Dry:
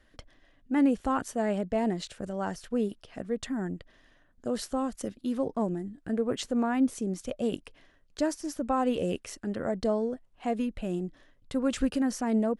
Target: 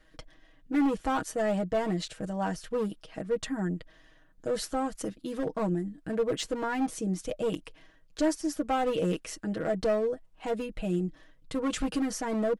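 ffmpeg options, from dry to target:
-af "volume=24dB,asoftclip=hard,volume=-24dB,aecho=1:1:6.3:0.75"

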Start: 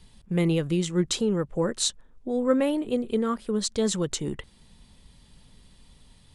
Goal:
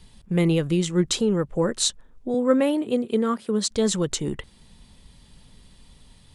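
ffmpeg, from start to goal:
-filter_complex "[0:a]asettb=1/sr,asplit=3[a][b][c];[a]atrim=end=2.344[d];[b]atrim=start=2.34:end=3.71,asetpts=PTS-STARTPTS,afade=t=in:d=0.004:c=qsin,afade=t=out:st=1.366:d=0.004:c=qsin,highpass=f=110:w=0.5412,highpass=f=110:w=1.3066[e];[c]atrim=start=3.706[f];[d][e]acrossfade=d=0.004:c1=hsin:c2=qsin[g];[g][f]acrossfade=d=0.004:c1=qsin:c2=hsin,volume=3dB"

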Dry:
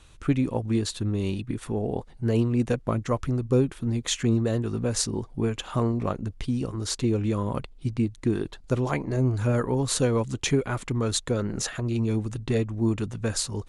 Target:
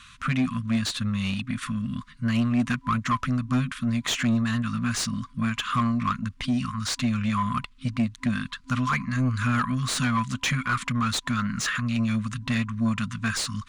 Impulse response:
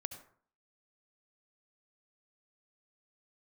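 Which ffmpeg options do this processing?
-filter_complex "[0:a]afftfilt=real='re*(1-between(b*sr/4096,260,1000))':imag='im*(1-between(b*sr/4096,260,1000))':win_size=4096:overlap=0.75,asplit=2[a][b];[b]highpass=f=720:p=1,volume=22dB,asoftclip=type=tanh:threshold=-11.5dB[c];[a][c]amix=inputs=2:normalize=0,lowpass=f=2.4k:p=1,volume=-6dB,volume=-1.5dB"

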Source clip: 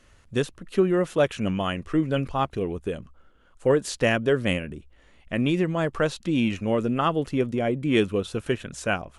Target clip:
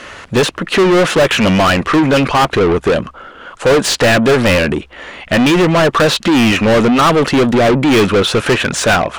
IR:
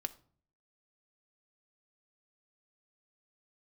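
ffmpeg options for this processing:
-filter_complex "[0:a]aemphasis=mode=reproduction:type=cd,asplit=2[a][b];[b]highpass=f=720:p=1,volume=33dB,asoftclip=type=tanh:threshold=-9dB[c];[a][c]amix=inputs=2:normalize=0,lowpass=f=5.1k:p=1,volume=-6dB,volume=5.5dB"

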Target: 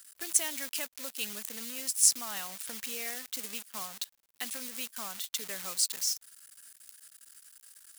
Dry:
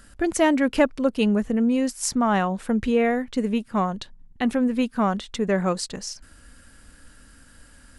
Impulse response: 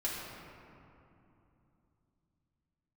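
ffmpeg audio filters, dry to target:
-filter_complex "[0:a]acrossover=split=170|3000[a][b][c];[b]acompressor=threshold=-27dB:ratio=3[d];[a][d][c]amix=inputs=3:normalize=0,acrusher=bits=7:dc=4:mix=0:aa=0.000001,aderivative,volume=4.5dB"

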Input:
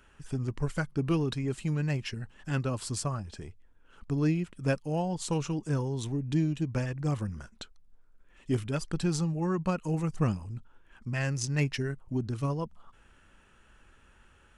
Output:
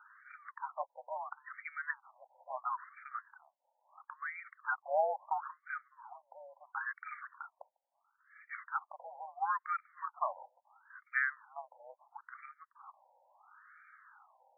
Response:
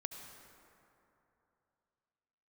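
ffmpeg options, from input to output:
-af "highpass=f=570:t=q:w=0.5412,highpass=f=570:t=q:w=1.307,lowpass=f=3.5k:t=q:w=0.5176,lowpass=f=3.5k:t=q:w=0.7071,lowpass=f=3.5k:t=q:w=1.932,afreqshift=-55,aeval=exprs='val(0)+0.000178*(sin(2*PI*50*n/s)+sin(2*PI*2*50*n/s)/2+sin(2*PI*3*50*n/s)/3+sin(2*PI*4*50*n/s)/4+sin(2*PI*5*50*n/s)/5)':c=same,afftfilt=real='re*between(b*sr/1024,680*pow(1700/680,0.5+0.5*sin(2*PI*0.74*pts/sr))/1.41,680*pow(1700/680,0.5+0.5*sin(2*PI*0.74*pts/sr))*1.41)':imag='im*between(b*sr/1024,680*pow(1700/680,0.5+0.5*sin(2*PI*0.74*pts/sr))/1.41,680*pow(1700/680,0.5+0.5*sin(2*PI*0.74*pts/sr))*1.41)':win_size=1024:overlap=0.75,volume=6.5dB"

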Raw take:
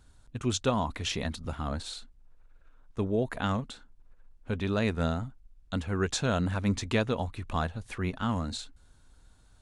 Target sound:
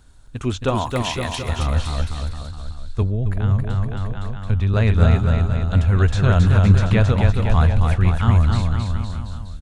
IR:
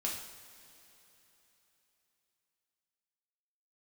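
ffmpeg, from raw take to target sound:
-filter_complex "[0:a]acrossover=split=2900[a][b];[b]acompressor=threshold=-44dB:ratio=4:attack=1:release=60[c];[a][c]amix=inputs=2:normalize=0,asettb=1/sr,asplit=3[d][e][f];[d]atrim=end=0.754[g];[e]atrim=start=0.75:end=1.49,asetpts=PTS-STARTPTS,afade=t=in:d=0.004:c=qsin,afade=t=out:st=0.736:d=0.004:c=qsin,aemphasis=mode=production:type=bsi[h];[f]atrim=start=1.486[i];[g][h]acrossfade=d=0.004:c1=hsin:c2=qsin[j];[j][i]acrossfade=d=0.004:c1=qsin:c2=hsin,aecho=1:1:270|513|731.7|928.5|1106:0.631|0.398|0.251|0.158|0.1,asettb=1/sr,asplit=3[k][l][m];[k]atrim=end=3.024[n];[l]atrim=start=3.02:end=4.74,asetpts=PTS-STARTPTS,afade=t=in:d=0.004:c=qsin,afade=t=out:st=1.716:d=0.004:c=qsin,acrossover=split=210[o][p];[p]acompressor=threshold=-37dB:ratio=6[q];[o][q]amix=inputs=2:normalize=0[r];[m]atrim=start=4.736[s];[n][r]acrossfade=d=0.004:c1=hsin:c2=qsin[t];[t][s]acrossfade=d=0.004:c1=qsin:c2=hsin,asubboost=boost=7.5:cutoff=100,volume=7dB"

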